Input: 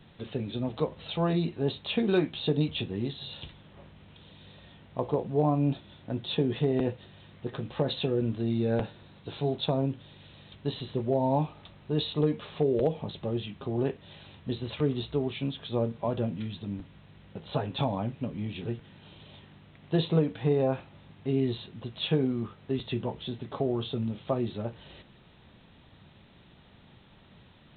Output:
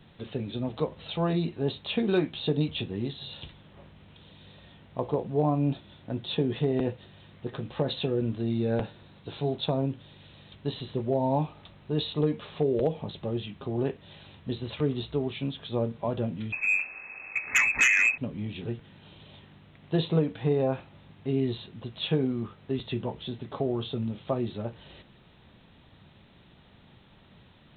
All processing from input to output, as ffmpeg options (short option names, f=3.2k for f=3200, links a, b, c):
-filter_complex "[0:a]asettb=1/sr,asplit=3[a][b][c];[a]atrim=end=16.524[d];[b]atrim=start=16.52:end=18.18,asetpts=PTS-STARTPTS,afade=t=in:d=0.004:c=qsin,afade=t=out:st=1.656:d=0.004:c=qsin,aemphasis=mode=production:type=75fm,lowpass=f=2.3k:t=q:w=0.5098,lowpass=f=2.3k:t=q:w=0.6013,lowpass=f=2.3k:t=q:w=0.9,lowpass=f=2.3k:t=q:w=2.563,afreqshift=-2700,aeval=exprs='0.158*sin(PI/2*2.24*val(0)/0.158)':c=same[e];[c]atrim=start=18.176[f];[d][e]acrossfade=d=0.004:c1=hsin:c2=qsin[g];[g][f]acrossfade=d=0.004:c1=qsin:c2=hsin"